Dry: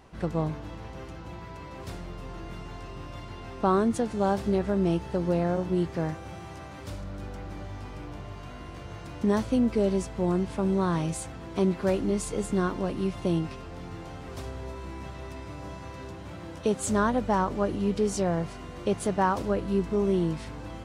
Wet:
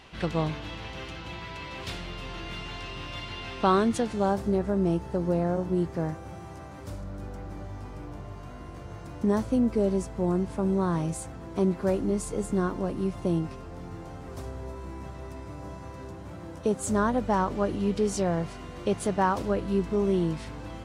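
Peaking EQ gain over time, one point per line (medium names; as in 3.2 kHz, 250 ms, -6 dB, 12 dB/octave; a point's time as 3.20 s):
peaking EQ 3.1 kHz 1.7 oct
3.56 s +13.5 dB
4.14 s +4.5 dB
4.40 s -7 dB
16.80 s -7 dB
17.45 s +0.5 dB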